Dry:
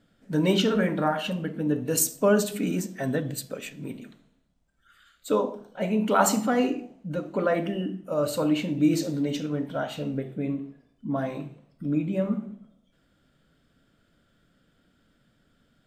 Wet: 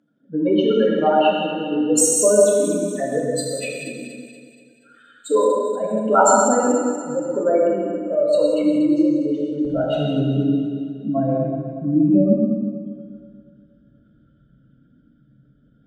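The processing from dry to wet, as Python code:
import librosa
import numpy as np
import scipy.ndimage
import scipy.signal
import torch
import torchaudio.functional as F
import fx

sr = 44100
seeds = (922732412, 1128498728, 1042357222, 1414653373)

y = fx.spec_expand(x, sr, power=2.3)
y = scipy.signal.sosfilt(scipy.signal.butter(4, 11000.0, 'lowpass', fs=sr, output='sos'), y)
y = fx.notch(y, sr, hz=1900.0, q=30.0)
y = fx.highpass(y, sr, hz=fx.steps((0.0, 360.0), (9.65, 45.0)), slope=12)
y = fx.echo_alternate(y, sr, ms=119, hz=810.0, feedback_pct=69, wet_db=-4.0)
y = fx.rev_gated(y, sr, seeds[0], gate_ms=220, shape='flat', drr_db=-2.0)
y = y * 10.0 ** (5.5 / 20.0)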